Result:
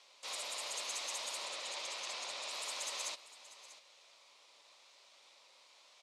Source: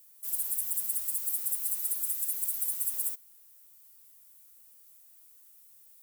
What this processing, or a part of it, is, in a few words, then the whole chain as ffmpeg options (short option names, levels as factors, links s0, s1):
voice changer toy: -filter_complex "[0:a]asettb=1/sr,asplit=3[s0][s1][s2];[s0]atrim=end=1.454[s3];[s1]atrim=start=1.45:end=2.51,asetpts=PTS-STARTPTS,afade=t=in:d=0.004:c=qsin,afade=t=out:st=1.056:d=0.004:c=qsin,lowpass=7200[s4];[s2]atrim=start=2.506[s5];[s3][s4]acrossfade=d=0.004:c1=hsin:c2=qsin[s6];[s6][s5]acrossfade=d=0.004:c1=qsin:c2=hsin,aeval=exprs='val(0)*sin(2*PI*1200*n/s+1200*0.25/1*sin(2*PI*1*n/s))':c=same,highpass=520,equalizer=f=570:t=q:w=4:g=9,equalizer=f=1000:t=q:w=4:g=6,equalizer=f=1600:t=q:w=4:g=-8,equalizer=f=2400:t=q:w=4:g=4,equalizer=f=3900:t=q:w=4:g=4,lowpass=f=4800:w=0.5412,lowpass=f=4800:w=1.3066,aecho=1:1:641:0.158,volume=6.31"